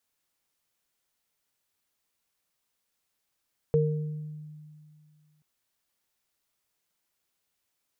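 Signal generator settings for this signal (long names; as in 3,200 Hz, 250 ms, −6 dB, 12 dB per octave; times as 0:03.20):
inharmonic partials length 1.68 s, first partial 152 Hz, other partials 461 Hz, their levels 3 dB, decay 2.31 s, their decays 0.71 s, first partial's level −22 dB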